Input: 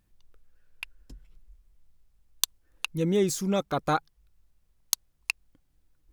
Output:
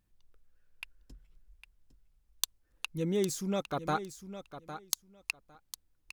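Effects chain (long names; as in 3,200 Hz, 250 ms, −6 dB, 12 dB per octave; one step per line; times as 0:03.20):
repeating echo 806 ms, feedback 16%, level −12 dB
level −6 dB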